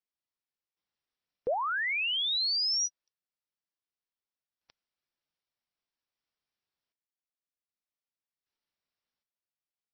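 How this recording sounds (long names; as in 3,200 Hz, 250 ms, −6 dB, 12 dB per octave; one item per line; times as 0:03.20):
sample-and-hold tremolo 1.3 Hz, depth 80%
MP3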